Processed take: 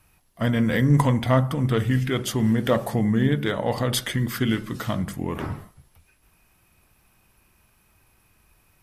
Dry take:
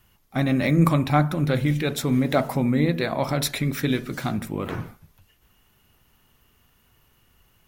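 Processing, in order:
speed change −13%
in parallel at −4 dB: asymmetric clip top −15.5 dBFS
on the sum: level −4 dB

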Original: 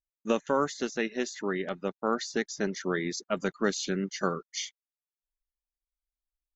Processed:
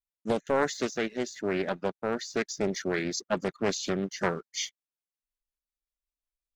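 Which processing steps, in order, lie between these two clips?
leveller curve on the samples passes 1
rotating-speaker cabinet horn 1 Hz, later 5.5 Hz, at 0:02.10
highs frequency-modulated by the lows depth 0.36 ms

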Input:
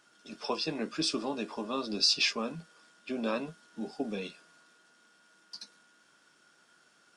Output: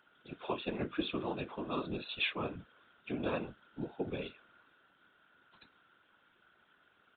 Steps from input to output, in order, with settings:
downsampling to 8,000 Hz
random phases in short frames
level −3 dB

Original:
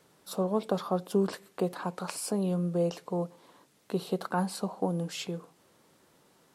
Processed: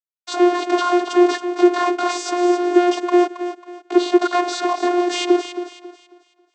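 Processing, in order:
low-shelf EQ 410 Hz −5 dB
fuzz pedal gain 50 dB, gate −46 dBFS
feedback echo with a high-pass in the loop 272 ms, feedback 35%, high-pass 240 Hz, level −10 dB
channel vocoder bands 16, saw 354 Hz

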